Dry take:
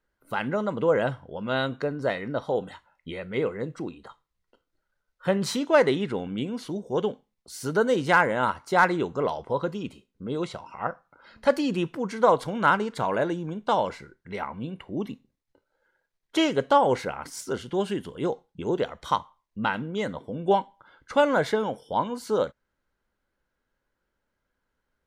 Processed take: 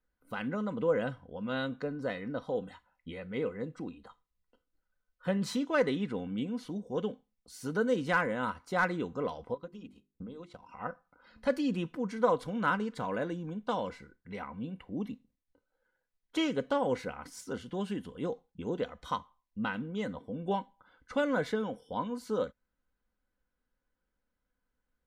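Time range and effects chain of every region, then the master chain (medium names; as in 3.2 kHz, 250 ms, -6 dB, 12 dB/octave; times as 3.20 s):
9.54–10.69 s: compression 2.5:1, threshold -43 dBFS + transient shaper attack +9 dB, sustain -9 dB + hum notches 50/100/150/200/250/300/350/400 Hz
whole clip: tone controls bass +5 dB, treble -2 dB; comb 4 ms, depth 43%; dynamic bell 800 Hz, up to -5 dB, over -36 dBFS, Q 3; trim -8.5 dB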